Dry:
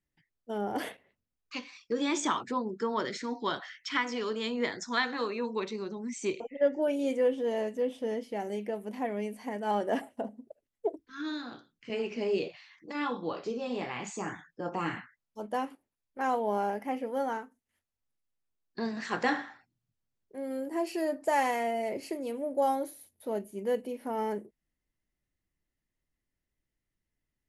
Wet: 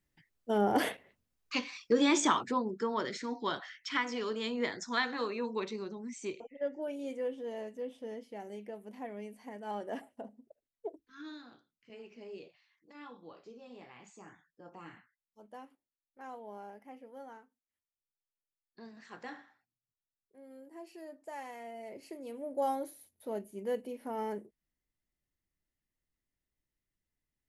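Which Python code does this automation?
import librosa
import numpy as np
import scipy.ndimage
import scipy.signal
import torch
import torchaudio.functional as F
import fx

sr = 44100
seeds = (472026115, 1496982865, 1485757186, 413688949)

y = fx.gain(x, sr, db=fx.line((1.85, 5.0), (2.94, -2.5), (5.73, -2.5), (6.58, -9.5), (11.2, -9.5), (11.9, -17.0), (21.46, -17.0), (22.64, -4.5)))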